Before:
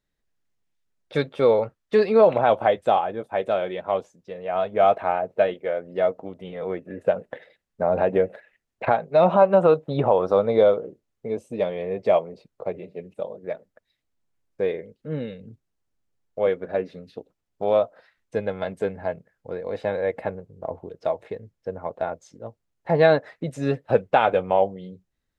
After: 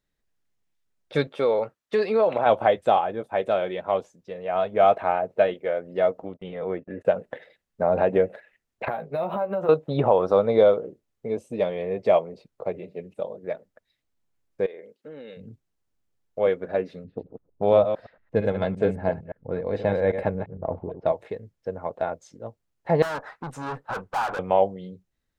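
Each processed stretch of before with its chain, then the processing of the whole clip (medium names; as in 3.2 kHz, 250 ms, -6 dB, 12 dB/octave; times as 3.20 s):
1.27–2.46 s: high-pass 280 Hz 6 dB/octave + compression 2:1, threshold -19 dBFS
6.23–7.05 s: gate -45 dBFS, range -29 dB + treble shelf 4 kHz -10 dB + tape noise reduction on one side only encoder only
8.88–9.69 s: compression 5:1, threshold -25 dBFS + doubling 14 ms -7.5 dB + decimation joined by straight lines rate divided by 3×
14.66–15.37 s: high-pass 350 Hz + compression 12:1, threshold -36 dBFS
17.04–21.12 s: chunks repeated in reverse 114 ms, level -8.5 dB + level-controlled noise filter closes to 800 Hz, open at -22.5 dBFS + bass shelf 280 Hz +9 dB
23.02–24.39 s: valve stage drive 32 dB, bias 0.35 + high-order bell 1.1 kHz +12 dB 1.2 oct
whole clip: none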